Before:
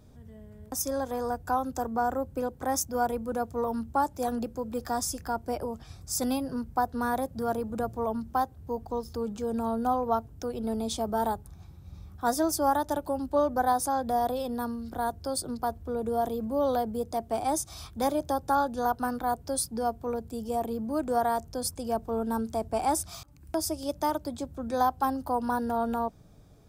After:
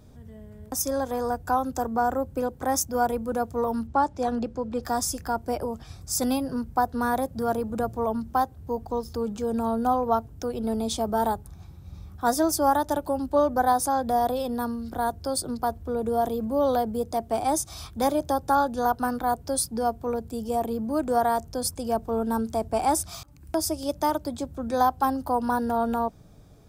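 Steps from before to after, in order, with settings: 3.87–4.83 LPF 5300 Hz 12 dB/oct; gain +3.5 dB

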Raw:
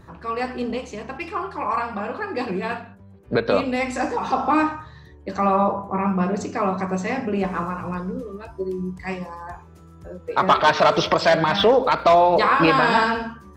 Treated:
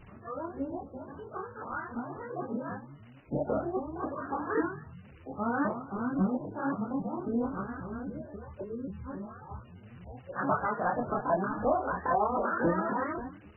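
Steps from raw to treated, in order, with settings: repeated pitch sweeps +7.5 st, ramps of 0.269 s; EQ curve 130 Hz 0 dB, 1600 Hz -11 dB, 2500 Hz -28 dB, 5400 Hz -17 dB; chorus voices 6, 0.87 Hz, delay 25 ms, depth 4.3 ms; crackle 540/s -42 dBFS; MP3 8 kbps 16000 Hz

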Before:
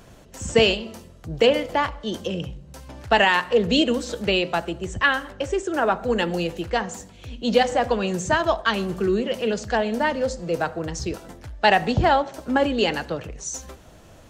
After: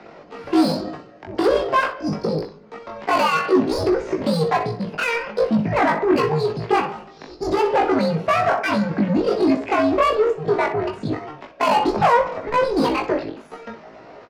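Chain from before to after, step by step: mistuned SSB -270 Hz 280–3400 Hz; in parallel at +2 dB: limiter -14 dBFS, peak gain reduction 8.5 dB; on the sum: soft clip -17.5 dBFS, distortion -8 dB; pitch shift +10 st; three-band isolator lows -18 dB, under 150 Hz, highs -13 dB, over 2000 Hz; on a send: early reflections 19 ms -5 dB, 62 ms -11.5 dB; on the sum: gain +4 dB

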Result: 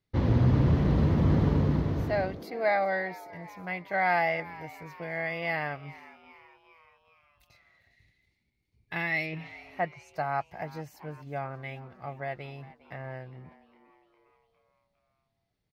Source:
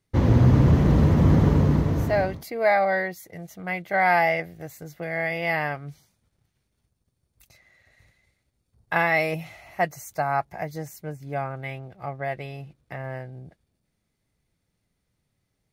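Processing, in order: 9.25–10.16 treble ducked by the level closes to 2200 Hz, closed at -22.5 dBFS; 7.88–9.4 spectral gain 440–1700 Hz -9 dB; resonant high shelf 5700 Hz -7 dB, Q 1.5; frequency-shifting echo 0.406 s, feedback 55%, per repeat +110 Hz, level -19 dB; gain -6 dB

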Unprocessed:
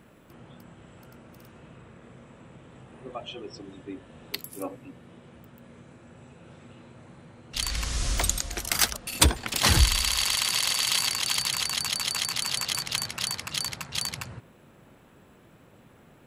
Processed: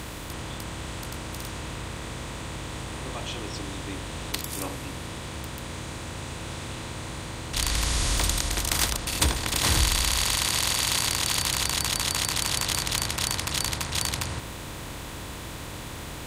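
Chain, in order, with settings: per-bin compression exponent 0.4; gain -6.5 dB

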